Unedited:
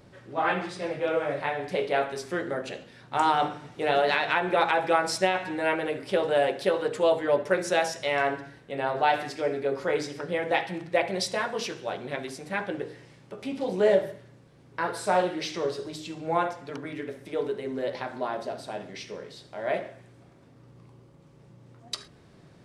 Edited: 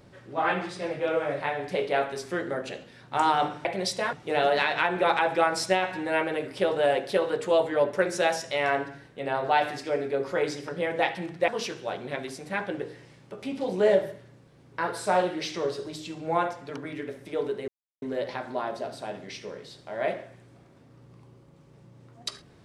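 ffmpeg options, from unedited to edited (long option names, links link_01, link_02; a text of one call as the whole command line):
ffmpeg -i in.wav -filter_complex "[0:a]asplit=5[link_01][link_02][link_03][link_04][link_05];[link_01]atrim=end=3.652[link_06];[link_02]atrim=start=10.998:end=11.482[link_07];[link_03]atrim=start=3.648:end=11.002[link_08];[link_04]atrim=start=11.478:end=17.68,asetpts=PTS-STARTPTS,afade=type=out:start_time=6.198:duration=0.004:curve=hsin,apad=pad_dur=0.34[link_09];[link_05]atrim=start=17.68,asetpts=PTS-STARTPTS,afade=type=in:duration=0.004:curve=hsin[link_10];[link_06][link_07]acrossfade=duration=0.004:curve1=hsin:curve2=hsin[link_11];[link_11][link_08]acrossfade=duration=0.004:curve1=hsin:curve2=hsin[link_12];[link_09][link_10]concat=n=2:v=0:a=1[link_13];[link_12][link_13]acrossfade=duration=0.004:curve1=hsin:curve2=hsin" out.wav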